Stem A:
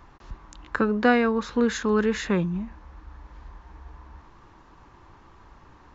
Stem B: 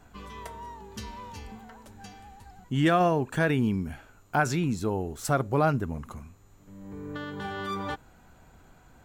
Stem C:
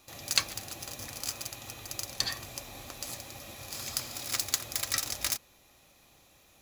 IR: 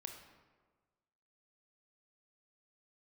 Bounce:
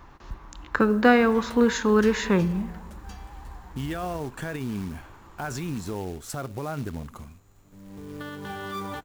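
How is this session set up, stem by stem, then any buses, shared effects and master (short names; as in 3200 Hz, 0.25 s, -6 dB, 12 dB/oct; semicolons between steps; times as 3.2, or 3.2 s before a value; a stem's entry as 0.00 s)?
-0.5 dB, 0.00 s, no bus, send -4 dB, dry
-0.5 dB, 1.05 s, bus A, no send, dry
off
bus A: 0.0 dB, short-mantissa float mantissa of 2-bit; limiter -23.5 dBFS, peak gain reduction 11.5 dB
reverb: on, RT60 1.4 s, pre-delay 23 ms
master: companded quantiser 8-bit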